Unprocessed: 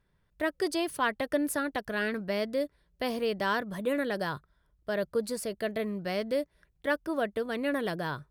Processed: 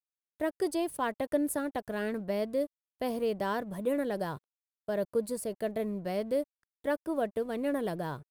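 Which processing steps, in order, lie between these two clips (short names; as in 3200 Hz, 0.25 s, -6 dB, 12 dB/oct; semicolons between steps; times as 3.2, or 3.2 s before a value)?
crossover distortion -54.5 dBFS; band shelf 2700 Hz -8 dB 2.7 oct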